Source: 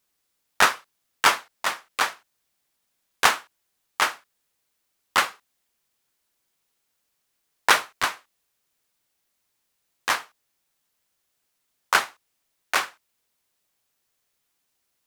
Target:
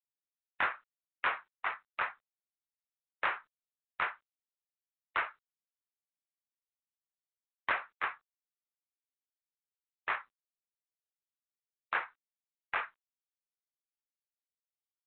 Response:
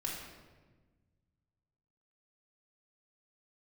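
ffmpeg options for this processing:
-af "afftdn=nr=34:nf=-36,acompressor=threshold=0.00891:ratio=1.5,highpass=f=220:t=q:w=0.5412,highpass=f=220:t=q:w=1.307,lowpass=f=2500:t=q:w=0.5176,lowpass=f=2500:t=q:w=0.7071,lowpass=f=2500:t=q:w=1.932,afreqshift=110,asoftclip=type=tanh:threshold=0.075" -ar 8000 -c:a adpcm_g726 -b:a 32k

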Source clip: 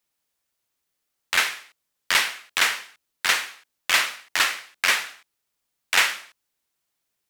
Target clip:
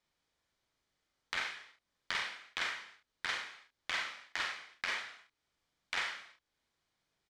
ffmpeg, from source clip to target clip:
-filter_complex "[0:a]lowpass=4600,lowshelf=f=130:g=7,asplit=2[s0][s1];[s1]aecho=0:1:39|69:0.562|0.282[s2];[s0][s2]amix=inputs=2:normalize=0,acompressor=threshold=0.00447:ratio=2,bandreject=f=2700:w=11"

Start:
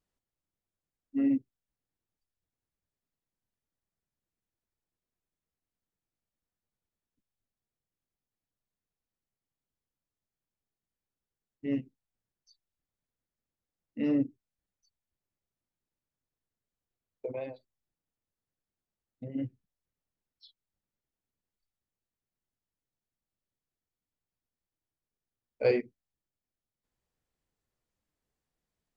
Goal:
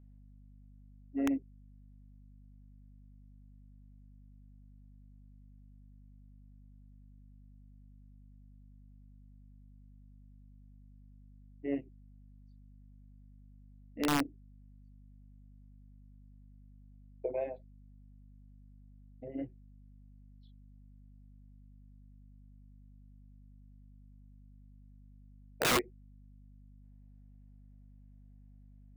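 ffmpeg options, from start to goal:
-af "highpass=240,equalizer=f=240:t=q:w=4:g=-8,equalizer=f=360:t=q:w=4:g=5,equalizer=f=690:t=q:w=4:g=8,equalizer=f=1200:t=q:w=4:g=-8,lowpass=f=2400:w=0.5412,lowpass=f=2400:w=1.3066,aeval=exprs='(mod(13.3*val(0)+1,2)-1)/13.3':c=same,aeval=exprs='val(0)+0.00178*(sin(2*PI*50*n/s)+sin(2*PI*2*50*n/s)/2+sin(2*PI*3*50*n/s)/3+sin(2*PI*4*50*n/s)/4+sin(2*PI*5*50*n/s)/5)':c=same"

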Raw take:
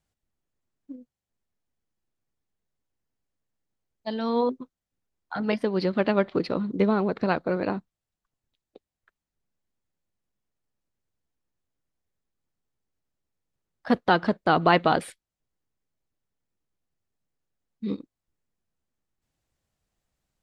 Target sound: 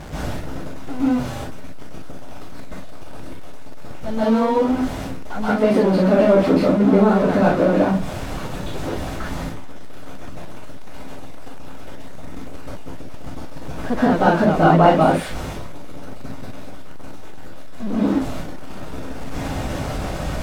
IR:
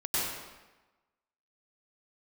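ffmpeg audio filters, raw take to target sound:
-filter_complex "[0:a]aeval=exprs='val(0)+0.5*0.075*sgn(val(0))':c=same,asplit=2[s0][s1];[s1]highpass=f=720:p=1,volume=3.55,asoftclip=type=tanh:threshold=0.562[s2];[s0][s2]amix=inputs=2:normalize=0,lowpass=f=2900:p=1,volume=0.501,tiltshelf=f=870:g=8.5[s3];[1:a]atrim=start_sample=2205,atrim=end_sample=6615,asetrate=33075,aresample=44100[s4];[s3][s4]afir=irnorm=-1:irlink=0,volume=0.447"

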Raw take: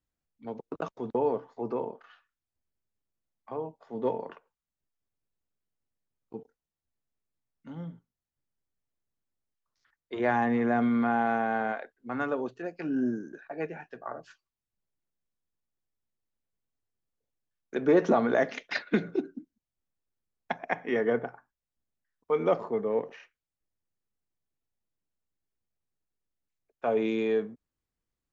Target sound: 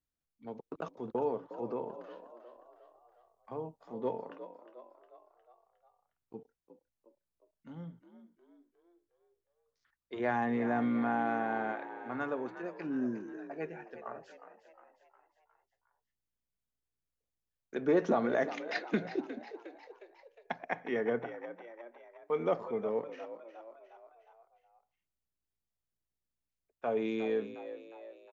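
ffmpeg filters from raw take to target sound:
-filter_complex "[0:a]asettb=1/sr,asplit=3[s0][s1][s2];[s0]atrim=end=1.894[s3];[s1]atrim=start=1.89:end=3.93,asetpts=PTS-STARTPTS,afade=t=in:d=0.004:c=qsin,afade=t=out:st=2.036:d=0.004:c=qsin,bass=f=250:g=5,treble=f=4000:g=5[s4];[s2]atrim=start=3.926[s5];[s3][s4]acrossfade=d=0.004:c1=hsin:c2=qsin[s6];[s6][s5]acrossfade=d=0.004:c1=qsin:c2=hsin,asplit=6[s7][s8][s9][s10][s11][s12];[s8]adelay=359,afreqshift=58,volume=0.237[s13];[s9]adelay=718,afreqshift=116,volume=0.123[s14];[s10]adelay=1077,afreqshift=174,volume=0.0638[s15];[s11]adelay=1436,afreqshift=232,volume=0.0335[s16];[s12]adelay=1795,afreqshift=290,volume=0.0174[s17];[s7][s13][s14][s15][s16][s17]amix=inputs=6:normalize=0,volume=0.531"

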